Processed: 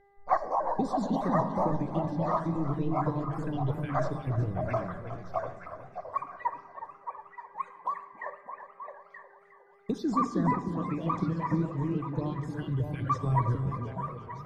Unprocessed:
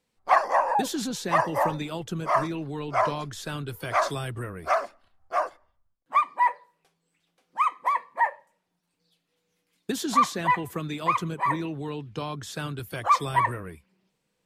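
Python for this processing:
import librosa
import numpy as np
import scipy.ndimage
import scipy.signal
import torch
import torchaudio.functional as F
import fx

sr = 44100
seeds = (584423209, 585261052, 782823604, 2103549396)

y = fx.spec_dropout(x, sr, seeds[0], share_pct=37)
y = fx.dmg_buzz(y, sr, base_hz=400.0, harmonics=5, level_db=-55.0, tilt_db=0, odd_only=False)
y = fx.env_phaser(y, sr, low_hz=210.0, high_hz=2900.0, full_db=-27.0)
y = fx.riaa(y, sr, side='playback')
y = fx.hum_notches(y, sr, base_hz=50, count=3)
y = fx.echo_stepped(y, sr, ms=309, hz=230.0, octaves=1.4, feedback_pct=70, wet_db=-0.5)
y = fx.room_shoebox(y, sr, seeds[1], volume_m3=1600.0, walls='mixed', distance_m=0.53)
y = fx.echo_warbled(y, sr, ms=362, feedback_pct=52, rate_hz=2.8, cents=111, wet_db=-12.5)
y = F.gain(torch.from_numpy(y), -5.0).numpy()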